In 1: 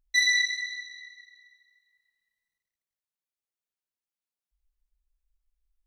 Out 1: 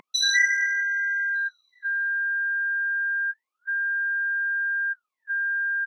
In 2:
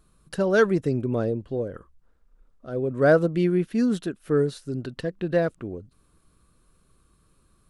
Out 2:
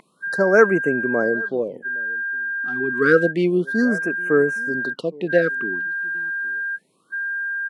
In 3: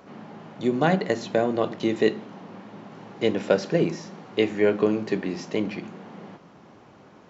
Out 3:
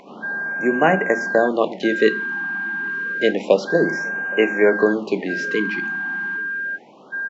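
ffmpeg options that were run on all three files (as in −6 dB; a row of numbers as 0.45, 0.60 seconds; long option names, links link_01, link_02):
-filter_complex "[0:a]lowshelf=frequency=290:gain=-9,aeval=exprs='val(0)+0.0316*sin(2*PI*1600*n/s)':channel_layout=same,highpass=frequency=170:width=0.5412,highpass=frequency=170:width=1.3066,highshelf=frequency=5000:gain=-10,asplit=2[link_01][link_02];[link_02]adelay=816.3,volume=-23dB,highshelf=frequency=4000:gain=-18.4[link_03];[link_01][link_03]amix=inputs=2:normalize=0,afftfilt=real='re*(1-between(b*sr/1024,500*pow(4200/500,0.5+0.5*sin(2*PI*0.29*pts/sr))/1.41,500*pow(4200/500,0.5+0.5*sin(2*PI*0.29*pts/sr))*1.41))':imag='im*(1-between(b*sr/1024,500*pow(4200/500,0.5+0.5*sin(2*PI*0.29*pts/sr))/1.41,500*pow(4200/500,0.5+0.5*sin(2*PI*0.29*pts/sr))*1.41))':win_size=1024:overlap=0.75,volume=8dB"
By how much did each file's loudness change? +0.5, +4.0, +4.5 LU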